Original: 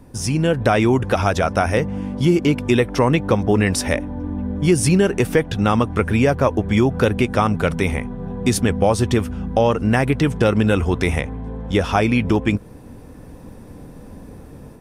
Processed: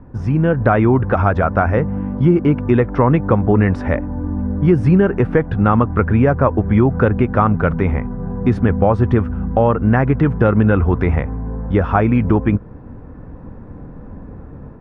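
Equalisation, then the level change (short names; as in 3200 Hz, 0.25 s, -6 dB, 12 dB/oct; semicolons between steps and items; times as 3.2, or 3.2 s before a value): synth low-pass 1400 Hz, resonance Q 1.7; low shelf 240 Hz +7.5 dB; -1.0 dB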